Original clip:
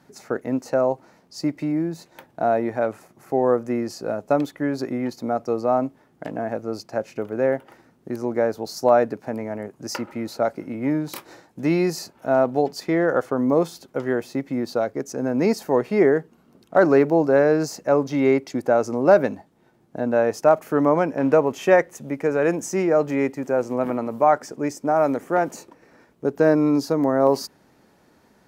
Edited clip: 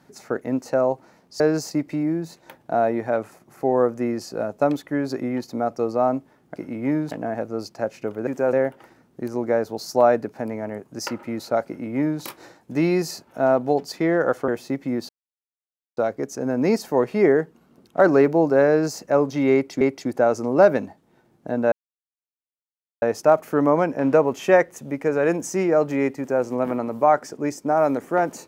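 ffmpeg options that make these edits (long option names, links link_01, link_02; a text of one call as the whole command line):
ffmpeg -i in.wav -filter_complex "[0:a]asplit=11[link_01][link_02][link_03][link_04][link_05][link_06][link_07][link_08][link_09][link_10][link_11];[link_01]atrim=end=1.402[link_12];[link_02]atrim=start=17.458:end=17.772[link_13];[link_03]atrim=start=1.398:end=6.252[link_14];[link_04]atrim=start=10.548:end=11.102[link_15];[link_05]atrim=start=6.248:end=7.412[link_16];[link_06]atrim=start=23.368:end=23.632[link_17];[link_07]atrim=start=7.408:end=13.362[link_18];[link_08]atrim=start=14.128:end=14.74,asetpts=PTS-STARTPTS,afade=type=out:start_time=0.608:duration=0.004:curve=hsin,apad=pad_dur=0.88[link_19];[link_09]atrim=start=14.74:end=18.582,asetpts=PTS-STARTPTS,afade=type=in:duration=0.004:curve=hsin[link_20];[link_10]atrim=start=18.298:end=20.21,asetpts=PTS-STARTPTS,afade=type=out:start_time=1.908:duration=0.004:curve=hsin,apad=pad_dur=1.3[link_21];[link_11]atrim=start=20.21,asetpts=PTS-STARTPTS,afade=type=in:duration=0.004:curve=hsin[link_22];[link_12][link_13]acrossfade=duration=0.004:curve1=hsin:curve2=hsin[link_23];[link_23][link_14]acrossfade=duration=0.004:curve1=hsin:curve2=hsin[link_24];[link_24][link_15]acrossfade=duration=0.004:curve1=hsin:curve2=hsin[link_25];[link_25][link_16]acrossfade=duration=0.004:curve1=hsin:curve2=hsin[link_26];[link_26][link_17]acrossfade=duration=0.004:curve1=hsin:curve2=hsin[link_27];[link_27][link_18]acrossfade=duration=0.004:curve1=hsin:curve2=hsin[link_28];[link_19][link_20]concat=n=2:v=0:a=1[link_29];[link_28][link_29]acrossfade=duration=0.004:curve1=hsin:curve2=hsin[link_30];[link_21][link_22]concat=n=2:v=0:a=1[link_31];[link_30][link_31]acrossfade=duration=0.004:curve1=hsin:curve2=hsin" out.wav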